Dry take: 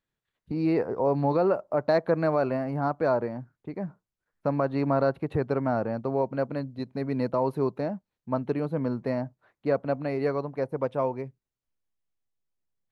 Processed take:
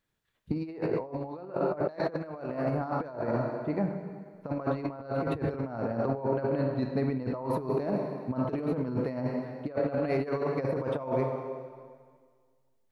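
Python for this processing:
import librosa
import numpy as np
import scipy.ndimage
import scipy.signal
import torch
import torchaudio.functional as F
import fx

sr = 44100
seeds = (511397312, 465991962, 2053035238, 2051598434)

y = fx.high_shelf(x, sr, hz=3800.0, db=-9.0, at=(6.06, 7.49))
y = fx.rev_plate(y, sr, seeds[0], rt60_s=1.8, hf_ratio=0.95, predelay_ms=0, drr_db=5.0)
y = fx.over_compress(y, sr, threshold_db=-30.0, ratio=-0.5)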